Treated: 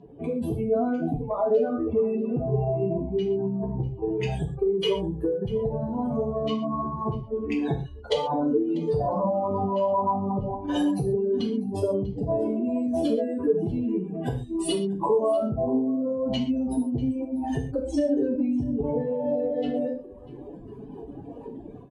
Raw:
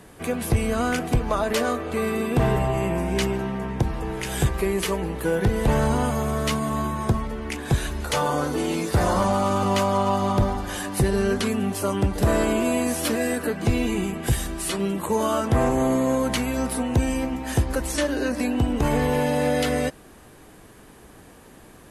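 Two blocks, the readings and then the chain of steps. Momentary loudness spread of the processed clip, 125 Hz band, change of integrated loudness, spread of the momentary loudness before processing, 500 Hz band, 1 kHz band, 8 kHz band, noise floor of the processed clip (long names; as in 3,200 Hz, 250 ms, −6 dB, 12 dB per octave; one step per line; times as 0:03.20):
7 LU, −6.5 dB, −2.5 dB, 5 LU, −0.5 dB, −5.0 dB, −16.0 dB, −42 dBFS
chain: expanding power law on the bin magnitudes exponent 2.4
dynamic equaliser 2,900 Hz, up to −5 dB, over −55 dBFS, Q 3.3
brickwall limiter −17.5 dBFS, peak gain reduction 6 dB
flat-topped bell 1,600 Hz −13.5 dB 1.1 octaves
automatic gain control
reverb reduction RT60 1.4 s
low-pass filter 4,300 Hz 12 dB per octave
downward compressor 6 to 1, threshold −24 dBFS, peak gain reduction 14 dB
high-pass filter 150 Hz 6 dB per octave
comb filter 7.3 ms, depth 39%
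on a send: single-tap delay 644 ms −21 dB
on the sum: reverb whose tail is shaped and stops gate 160 ms falling, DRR 1 dB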